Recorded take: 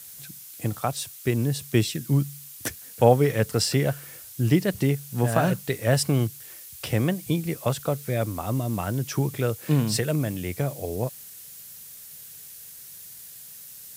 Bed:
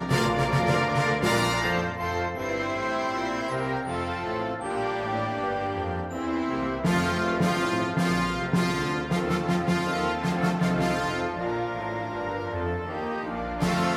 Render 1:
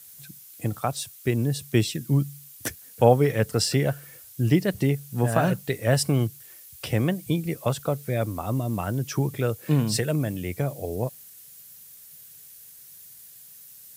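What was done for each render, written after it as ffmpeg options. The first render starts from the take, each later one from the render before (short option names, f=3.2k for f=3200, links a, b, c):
-af "afftdn=nr=6:nf=-44"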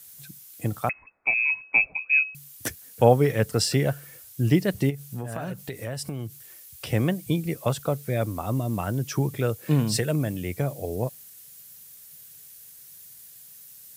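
-filter_complex "[0:a]asettb=1/sr,asplit=3[a][b][c];[a]atrim=end=0.894[d];[b]atrim=start=0.89:end=2.35,asetpts=PTS-STARTPTS,afade=t=in:d=0.004:c=qsin,afade=t=out:st=1.456:d=0.004:c=qsin,lowpass=f=2.3k:t=q:w=0.5098,lowpass=f=2.3k:t=q:w=0.6013,lowpass=f=2.3k:t=q:w=0.9,lowpass=f=2.3k:t=q:w=2.563,afreqshift=-2700[e];[c]atrim=start=2.346[f];[d][e]acrossfade=d=0.004:c1=hsin:c2=qsin[g];[g][f]acrossfade=d=0.004:c1=qsin:c2=hsin,asplit=3[h][i][j];[h]afade=t=out:st=4.89:d=0.02[k];[i]acompressor=threshold=-30dB:ratio=4:attack=3.2:release=140:knee=1:detection=peak,afade=t=in:st=4.89:d=0.02,afade=t=out:st=6.91:d=0.02[l];[j]afade=t=in:st=6.91:d=0.02[m];[k][l][m]amix=inputs=3:normalize=0"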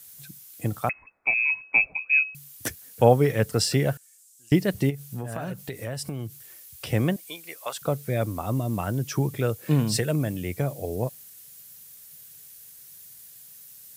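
-filter_complex "[0:a]asettb=1/sr,asplit=3[a][b][c];[a]atrim=end=3.974[d];[b]atrim=start=3.97:end=4.52,asetpts=PTS-STARTPTS,afade=t=in:d=0.004:c=qsin,afade=t=out:st=0.546:d=0.004:c=qsin,bandpass=f=7.6k:t=q:w=2.5[e];[c]atrim=start=4.516[f];[d][e]acrossfade=d=0.004:c1=hsin:c2=qsin[g];[g][f]acrossfade=d=0.004:c1=qsin:c2=hsin,asettb=1/sr,asplit=3[h][i][j];[h]atrim=end=7.164[k];[i]atrim=start=7.16:end=7.82,asetpts=PTS-STARTPTS,afade=t=in:d=0.004:c=qsin,afade=t=out:st=0.656:d=0.004:c=qsin,highpass=880[l];[j]atrim=start=7.816[m];[k][l]acrossfade=d=0.004:c1=hsin:c2=qsin[n];[n][m]acrossfade=d=0.004:c1=qsin:c2=hsin"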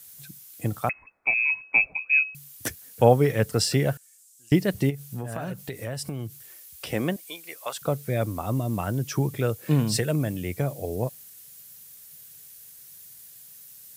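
-filter_complex "[0:a]asettb=1/sr,asplit=3[a][b][c];[a]atrim=end=6.514[d];[b]atrim=start=6.51:end=7.53,asetpts=PTS-STARTPTS,afade=t=in:d=0.004:c=qsin,afade=t=out:st=1.016:d=0.004:c=qsin,equalizer=f=110:w=1.4:g=-10.5[e];[c]atrim=start=7.526[f];[d][e]acrossfade=d=0.004:c1=hsin:c2=qsin[g];[g][f]acrossfade=d=0.004:c1=qsin:c2=hsin"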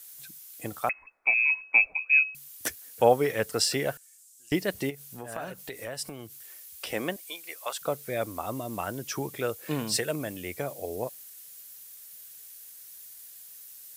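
-af "equalizer=f=120:t=o:w=2.1:g=-15"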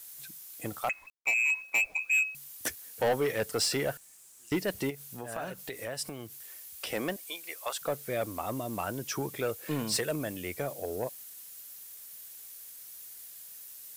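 -af "acrusher=bits=9:mix=0:aa=0.000001,asoftclip=type=tanh:threshold=-22dB"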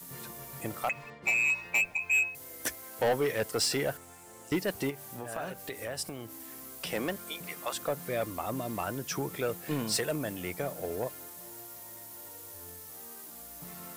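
-filter_complex "[1:a]volume=-24dB[a];[0:a][a]amix=inputs=2:normalize=0"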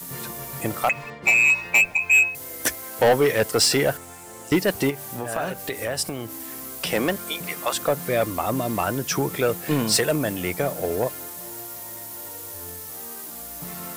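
-af "volume=10dB"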